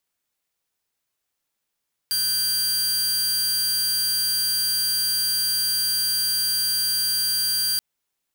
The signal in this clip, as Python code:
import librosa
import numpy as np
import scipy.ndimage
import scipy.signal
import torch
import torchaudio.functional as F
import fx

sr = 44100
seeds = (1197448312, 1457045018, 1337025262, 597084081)

y = 10.0 ** (-18.0 / 20.0) * (2.0 * np.mod(4730.0 * (np.arange(round(5.68 * sr)) / sr), 1.0) - 1.0)